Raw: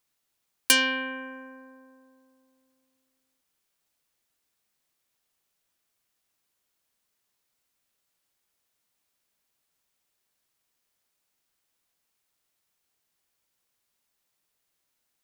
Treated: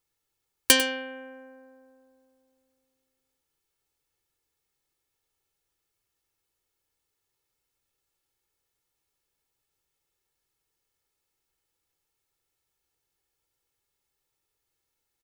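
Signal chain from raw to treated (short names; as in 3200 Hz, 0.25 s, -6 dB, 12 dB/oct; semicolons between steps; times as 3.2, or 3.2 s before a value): low shelf 400 Hz +8.5 dB; comb 2.3 ms, depth 63%; echo 98 ms -10.5 dB; upward expander 1.5:1, over -33 dBFS; gain +3 dB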